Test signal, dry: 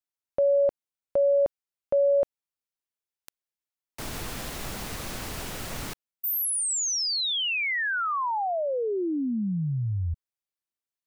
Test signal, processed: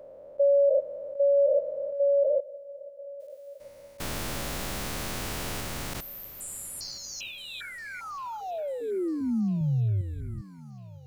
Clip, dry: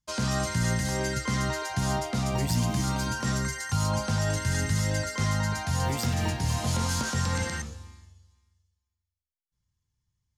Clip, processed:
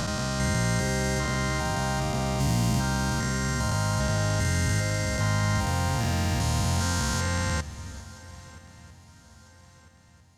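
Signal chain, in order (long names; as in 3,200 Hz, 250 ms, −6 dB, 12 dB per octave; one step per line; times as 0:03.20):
spectrum averaged block by block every 400 ms
feedback echo with a long and a short gap by turns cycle 1,299 ms, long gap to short 3 to 1, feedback 41%, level −20.5 dB
level +3.5 dB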